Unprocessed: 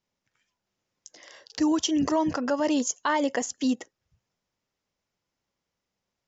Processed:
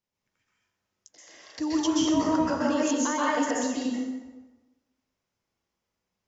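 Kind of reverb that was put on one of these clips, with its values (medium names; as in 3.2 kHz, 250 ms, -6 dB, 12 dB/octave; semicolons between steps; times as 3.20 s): plate-style reverb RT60 1.2 s, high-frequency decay 0.65×, pre-delay 115 ms, DRR -6.5 dB; trim -6.5 dB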